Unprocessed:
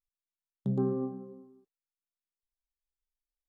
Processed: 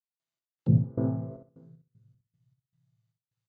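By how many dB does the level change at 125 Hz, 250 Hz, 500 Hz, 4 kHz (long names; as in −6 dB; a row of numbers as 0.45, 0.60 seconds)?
+10.5 dB, +3.5 dB, −4.5 dB, can't be measured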